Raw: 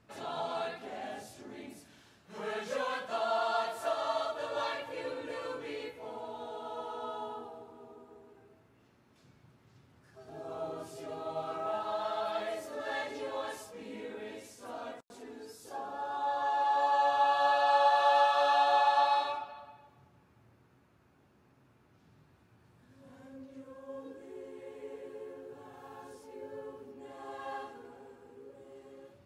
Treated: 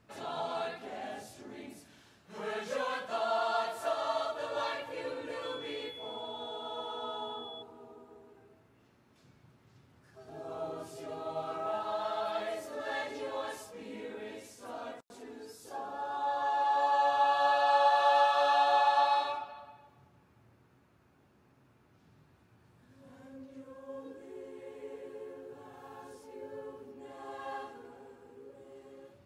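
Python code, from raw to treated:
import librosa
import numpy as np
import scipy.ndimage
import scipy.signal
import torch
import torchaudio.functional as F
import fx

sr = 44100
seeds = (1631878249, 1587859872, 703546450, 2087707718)

y = fx.dmg_tone(x, sr, hz=3400.0, level_db=-45.0, at=(5.42, 7.61), fade=0.02)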